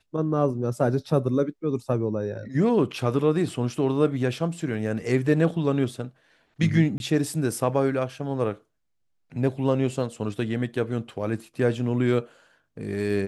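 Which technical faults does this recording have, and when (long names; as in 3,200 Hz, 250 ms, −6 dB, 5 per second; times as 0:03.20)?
0:06.98–0:07.00: drop-out 21 ms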